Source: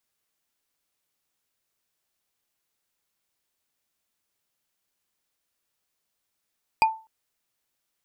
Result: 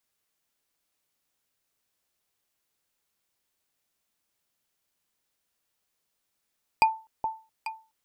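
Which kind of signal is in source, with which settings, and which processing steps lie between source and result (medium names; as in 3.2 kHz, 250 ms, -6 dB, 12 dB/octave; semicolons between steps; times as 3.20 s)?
wood hit bar, length 0.25 s, lowest mode 886 Hz, decay 0.32 s, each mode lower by 5.5 dB, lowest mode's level -12.5 dB
echo whose repeats swap between lows and highs 421 ms, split 880 Hz, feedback 51%, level -6 dB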